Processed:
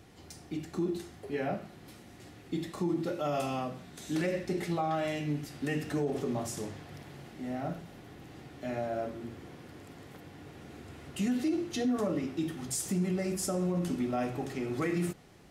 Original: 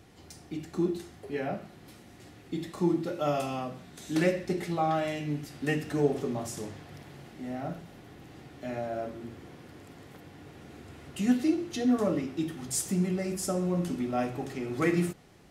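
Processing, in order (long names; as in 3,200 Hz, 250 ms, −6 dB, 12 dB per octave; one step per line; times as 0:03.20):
brickwall limiter −23 dBFS, peak gain reduction 9 dB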